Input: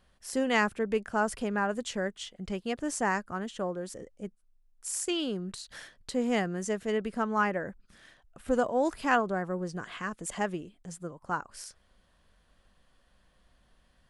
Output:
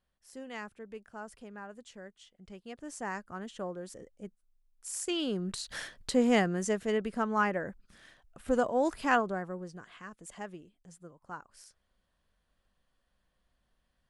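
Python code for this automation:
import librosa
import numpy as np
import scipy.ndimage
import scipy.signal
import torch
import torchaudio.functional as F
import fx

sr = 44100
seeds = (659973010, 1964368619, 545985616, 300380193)

y = fx.gain(x, sr, db=fx.line((2.28, -16.0), (3.5, -5.0), (4.88, -5.0), (5.79, 6.0), (7.06, -1.0), (9.17, -1.0), (9.87, -11.0)))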